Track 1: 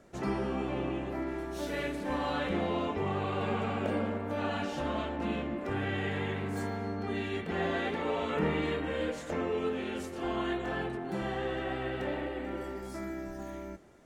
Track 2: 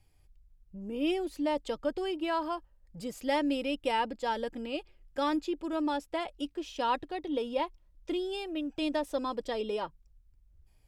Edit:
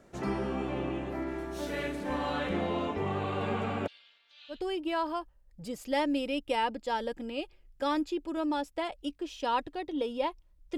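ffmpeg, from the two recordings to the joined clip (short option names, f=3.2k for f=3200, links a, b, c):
-filter_complex "[0:a]asplit=3[a][b][c];[a]afade=t=out:st=3.86:d=0.02[d];[b]asuperpass=centerf=4000:order=4:qfactor=2,afade=t=in:st=3.86:d=0.02,afade=t=out:st=4.62:d=0.02[e];[c]afade=t=in:st=4.62:d=0.02[f];[d][e][f]amix=inputs=3:normalize=0,apad=whole_dur=10.77,atrim=end=10.77,atrim=end=4.62,asetpts=PTS-STARTPTS[g];[1:a]atrim=start=1.84:end=8.13,asetpts=PTS-STARTPTS[h];[g][h]acrossfade=d=0.14:c1=tri:c2=tri"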